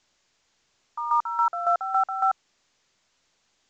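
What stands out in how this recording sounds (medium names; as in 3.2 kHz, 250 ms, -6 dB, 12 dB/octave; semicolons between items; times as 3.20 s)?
chopped level 3.6 Hz, depth 65%, duty 35%; a quantiser's noise floor 12-bit, dither triangular; µ-law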